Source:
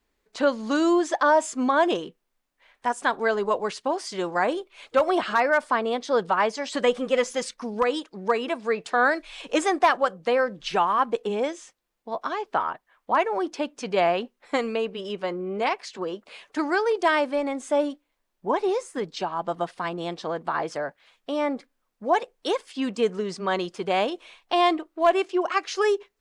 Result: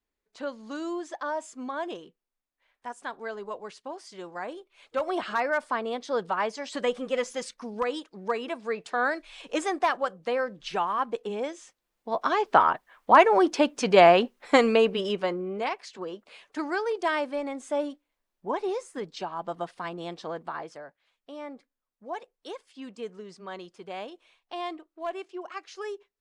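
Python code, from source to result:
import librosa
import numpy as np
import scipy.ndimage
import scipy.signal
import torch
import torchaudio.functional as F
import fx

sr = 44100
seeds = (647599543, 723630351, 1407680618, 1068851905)

y = fx.gain(x, sr, db=fx.line((4.56, -12.5), (5.24, -5.5), (11.49, -5.5), (12.49, 6.0), (14.94, 6.0), (15.69, -5.5), (20.37, -5.5), (20.84, -14.0)))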